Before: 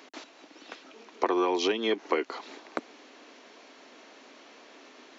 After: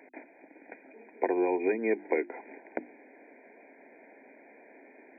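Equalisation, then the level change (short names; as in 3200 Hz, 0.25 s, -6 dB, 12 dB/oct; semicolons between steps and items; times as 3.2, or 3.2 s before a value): brick-wall FIR band-pass 160–2500 Hz; Butterworth band-stop 1200 Hz, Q 1.6; notches 50/100/150/200/250/300/350 Hz; 0.0 dB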